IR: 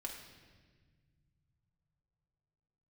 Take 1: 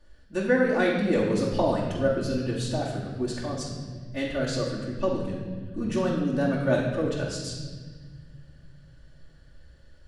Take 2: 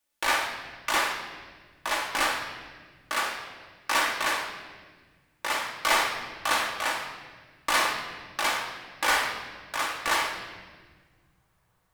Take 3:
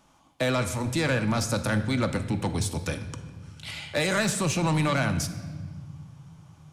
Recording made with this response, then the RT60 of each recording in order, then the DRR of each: 2; 1.5 s, 1.6 s, non-exponential decay; −7.0, −1.5, 7.5 decibels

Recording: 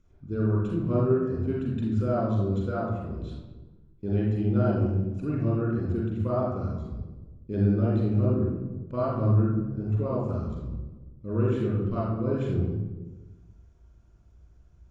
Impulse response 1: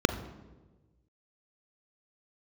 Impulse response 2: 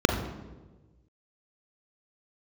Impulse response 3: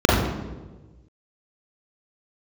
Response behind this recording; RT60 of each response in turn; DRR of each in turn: 3; 1.2, 1.2, 1.2 seconds; 9.5, 4.0, −6.0 decibels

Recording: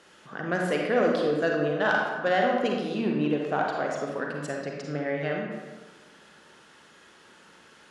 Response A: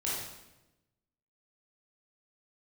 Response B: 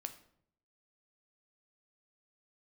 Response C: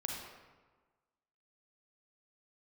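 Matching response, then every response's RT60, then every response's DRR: C; 1.0, 0.65, 1.4 seconds; −7.0, 7.5, −0.5 decibels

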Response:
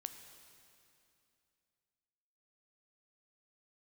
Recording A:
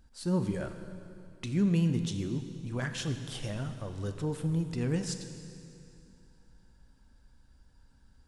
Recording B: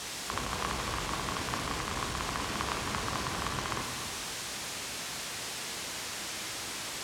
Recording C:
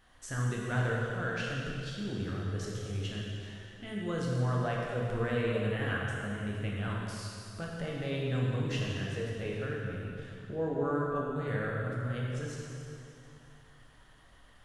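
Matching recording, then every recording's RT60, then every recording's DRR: A; 2.7, 2.7, 2.7 seconds; 7.5, 2.5, −4.0 decibels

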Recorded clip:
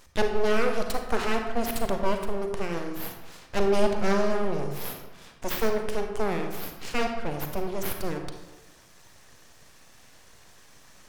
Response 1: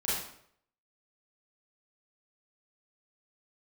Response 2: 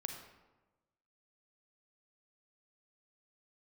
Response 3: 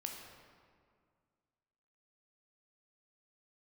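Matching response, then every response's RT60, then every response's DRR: 2; 0.65, 1.2, 2.0 seconds; −9.5, 4.0, 1.0 decibels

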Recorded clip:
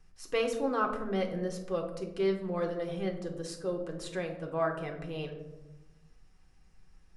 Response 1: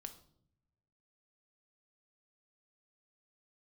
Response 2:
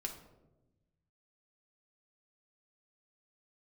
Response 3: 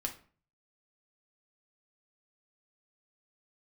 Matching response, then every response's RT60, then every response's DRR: 2; 0.70, 1.0, 0.40 seconds; 7.0, 1.0, 2.0 decibels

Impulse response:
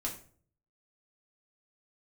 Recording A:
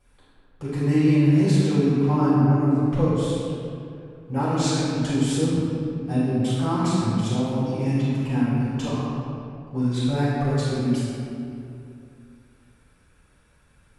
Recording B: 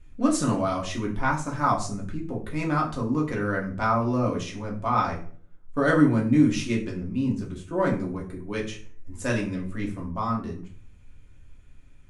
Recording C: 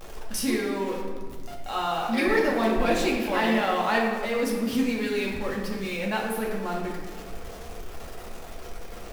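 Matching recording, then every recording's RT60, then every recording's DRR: B; 2.7, 0.50, 1.6 seconds; −13.0, −2.5, −3.0 decibels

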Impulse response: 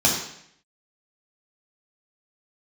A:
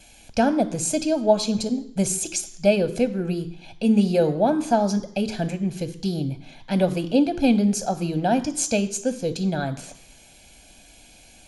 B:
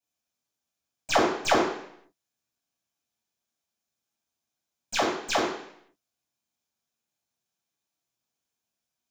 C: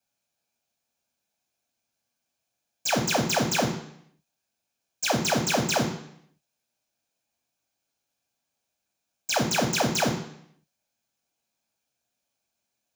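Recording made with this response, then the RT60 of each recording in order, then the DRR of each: B; 0.70, 0.70, 0.70 seconds; 12.5, −2.5, 4.5 decibels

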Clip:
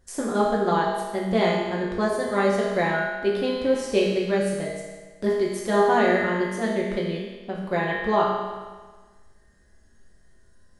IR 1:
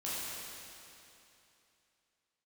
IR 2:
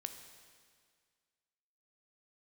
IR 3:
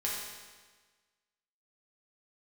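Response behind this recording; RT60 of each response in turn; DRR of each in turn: 3; 2.9, 1.9, 1.4 seconds; −9.5, 6.5, −5.5 decibels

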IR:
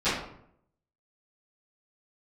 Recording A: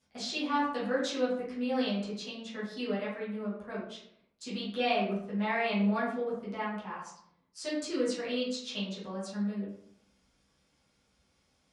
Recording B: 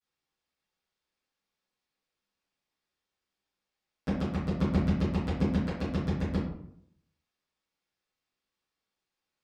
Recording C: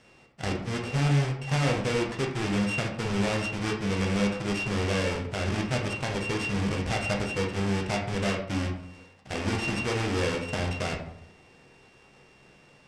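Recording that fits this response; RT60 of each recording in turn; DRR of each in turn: B; 0.70, 0.70, 0.70 seconds; −10.0, −19.5, −0.5 decibels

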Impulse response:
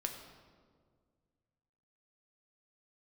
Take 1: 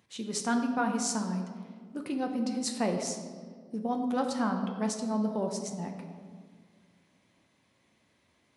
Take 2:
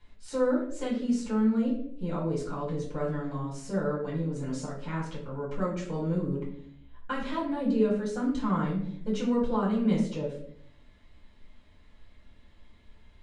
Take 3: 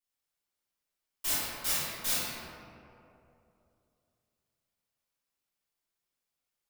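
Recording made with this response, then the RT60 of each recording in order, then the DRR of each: 1; 1.8, 0.65, 2.8 seconds; 3.0, −5.5, −13.5 decibels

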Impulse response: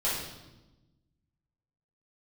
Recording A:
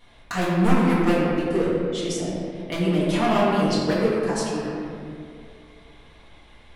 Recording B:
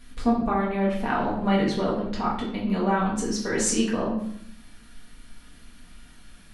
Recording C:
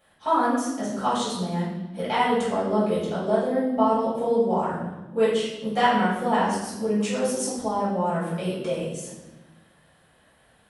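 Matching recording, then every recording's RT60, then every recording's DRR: C; 2.4, 0.65, 1.0 seconds; −8.5, −7.0, −10.5 decibels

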